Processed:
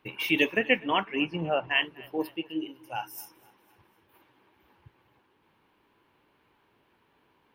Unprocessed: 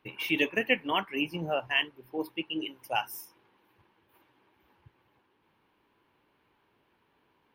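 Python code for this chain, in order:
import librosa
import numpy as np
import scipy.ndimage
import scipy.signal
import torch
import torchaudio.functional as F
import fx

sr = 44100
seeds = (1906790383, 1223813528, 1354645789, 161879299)

y = fx.lowpass(x, sr, hz=3300.0, slope=12, at=(0.56, 1.81), fade=0.02)
y = fx.hpss(y, sr, part='percussive', gain_db=-14, at=(2.37, 3.18))
y = fx.echo_feedback(y, sr, ms=250, feedback_pct=51, wet_db=-23.5)
y = y * librosa.db_to_amplitude(3.0)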